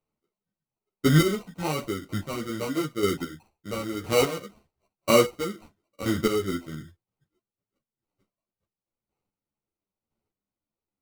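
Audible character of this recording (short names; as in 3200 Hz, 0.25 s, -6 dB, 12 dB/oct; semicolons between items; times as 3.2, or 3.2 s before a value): aliases and images of a low sample rate 1700 Hz, jitter 0%; chopped level 0.99 Hz, depth 60%, duty 20%; a shimmering, thickened sound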